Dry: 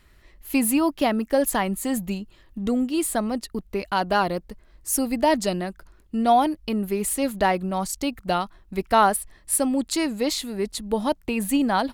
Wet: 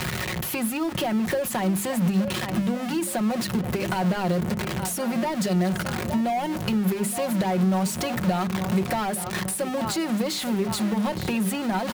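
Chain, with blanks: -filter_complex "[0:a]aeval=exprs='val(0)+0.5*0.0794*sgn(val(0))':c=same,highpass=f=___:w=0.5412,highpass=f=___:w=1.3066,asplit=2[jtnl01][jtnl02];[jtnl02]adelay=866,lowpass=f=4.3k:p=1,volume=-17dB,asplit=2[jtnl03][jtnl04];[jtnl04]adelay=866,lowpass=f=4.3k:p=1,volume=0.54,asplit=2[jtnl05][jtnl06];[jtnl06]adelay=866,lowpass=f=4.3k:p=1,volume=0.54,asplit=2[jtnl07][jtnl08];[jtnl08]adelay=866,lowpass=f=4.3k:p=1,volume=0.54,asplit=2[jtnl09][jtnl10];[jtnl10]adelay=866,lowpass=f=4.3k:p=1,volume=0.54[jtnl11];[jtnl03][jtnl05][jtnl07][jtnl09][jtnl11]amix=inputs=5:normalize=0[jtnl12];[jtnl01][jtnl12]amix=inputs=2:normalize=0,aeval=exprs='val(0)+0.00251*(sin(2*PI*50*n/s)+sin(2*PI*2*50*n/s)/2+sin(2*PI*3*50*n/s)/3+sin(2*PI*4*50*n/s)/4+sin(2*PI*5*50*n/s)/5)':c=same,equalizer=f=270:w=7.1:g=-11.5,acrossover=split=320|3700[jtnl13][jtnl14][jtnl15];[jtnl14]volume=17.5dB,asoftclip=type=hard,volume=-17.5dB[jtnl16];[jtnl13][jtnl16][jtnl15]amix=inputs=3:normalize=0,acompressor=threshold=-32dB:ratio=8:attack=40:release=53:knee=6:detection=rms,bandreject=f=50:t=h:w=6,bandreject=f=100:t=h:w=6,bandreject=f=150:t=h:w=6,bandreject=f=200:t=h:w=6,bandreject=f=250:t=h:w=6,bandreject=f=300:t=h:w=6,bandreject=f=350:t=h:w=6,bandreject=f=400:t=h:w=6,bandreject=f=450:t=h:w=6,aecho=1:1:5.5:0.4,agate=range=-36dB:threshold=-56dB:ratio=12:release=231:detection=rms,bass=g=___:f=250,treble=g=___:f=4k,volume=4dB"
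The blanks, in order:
96, 96, 7, -4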